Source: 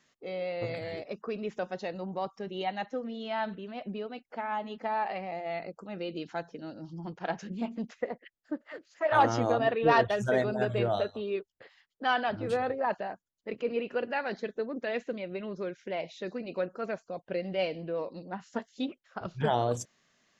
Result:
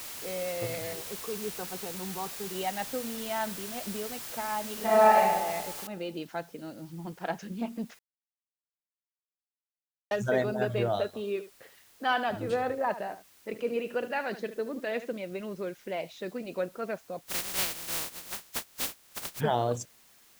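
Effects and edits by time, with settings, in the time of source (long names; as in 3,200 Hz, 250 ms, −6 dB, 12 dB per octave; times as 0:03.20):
0:00.93–0:02.55: phaser with its sweep stopped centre 400 Hz, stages 8
0:04.73–0:05.17: thrown reverb, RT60 1.3 s, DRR −9.5 dB
0:05.87: noise floor change −41 dB −60 dB
0:07.99–0:10.11: silence
0:11.06–0:15.17: single-tap delay 74 ms −13 dB
0:17.21–0:19.39: compressing power law on the bin magnitudes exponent 0.13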